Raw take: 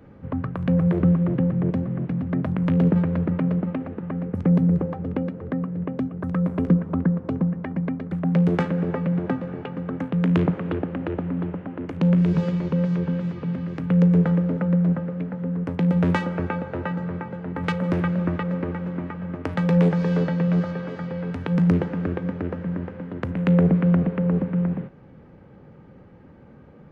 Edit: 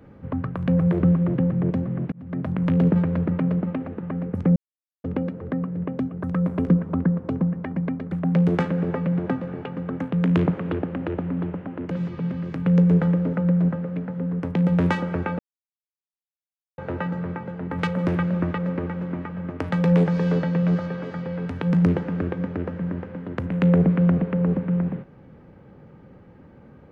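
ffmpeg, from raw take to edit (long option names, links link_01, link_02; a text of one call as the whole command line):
ffmpeg -i in.wav -filter_complex "[0:a]asplit=6[link_01][link_02][link_03][link_04][link_05][link_06];[link_01]atrim=end=2.12,asetpts=PTS-STARTPTS,afade=type=out:start_time=2.116:duration=0.004:curve=hsin[link_07];[link_02]atrim=start=2.12:end=4.56,asetpts=PTS-STARTPTS,afade=type=in:duration=0.59:curve=qsin,afade=type=out:start_time=2.436:duration=0.004:curve=hsin[link_08];[link_03]atrim=start=4.56:end=5.04,asetpts=PTS-STARTPTS,volume=0[link_09];[link_04]atrim=start=5.04:end=11.912,asetpts=PTS-STARTPTS,afade=type=in:duration=0.004:curve=hsin[link_10];[link_05]atrim=start=13.148:end=16.63,asetpts=PTS-STARTPTS,afade=type=out:start_time=3.478:duration=0.004:curve=hsin,apad=pad_dur=1.39[link_11];[link_06]atrim=start=16.63,asetpts=PTS-STARTPTS,afade=type=in:duration=0.004:curve=hsin[link_12];[link_07][link_08][link_09][link_10]concat=n=4:v=0:a=1[link_13];[link_11][link_12]concat=n=2:v=0:a=1[link_14];[link_13][link_14]acrossfade=duration=0.004:curve1=hsin:curve2=hsin" out.wav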